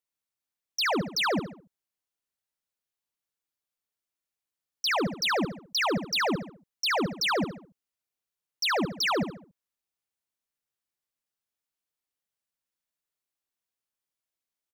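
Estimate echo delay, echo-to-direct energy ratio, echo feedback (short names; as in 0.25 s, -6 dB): 70 ms, -9.0 dB, 39%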